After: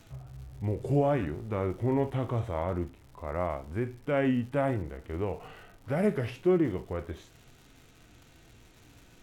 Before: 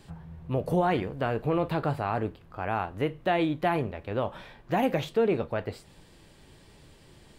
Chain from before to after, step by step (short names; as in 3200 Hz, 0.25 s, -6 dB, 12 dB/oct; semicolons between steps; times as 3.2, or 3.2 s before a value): harmonic-percussive split percussive -7 dB; crackle 290/s -48 dBFS; varispeed -20%